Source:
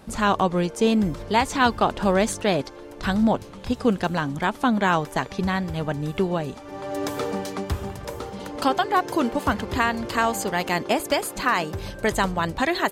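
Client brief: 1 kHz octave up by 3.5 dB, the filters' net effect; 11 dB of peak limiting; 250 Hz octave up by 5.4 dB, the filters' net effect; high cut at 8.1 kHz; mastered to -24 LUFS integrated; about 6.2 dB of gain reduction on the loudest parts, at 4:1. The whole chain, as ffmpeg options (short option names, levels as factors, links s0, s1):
-af "lowpass=8100,equalizer=f=250:t=o:g=6.5,equalizer=f=1000:t=o:g=4,acompressor=threshold=0.126:ratio=4,volume=1.58,alimiter=limit=0.2:level=0:latency=1"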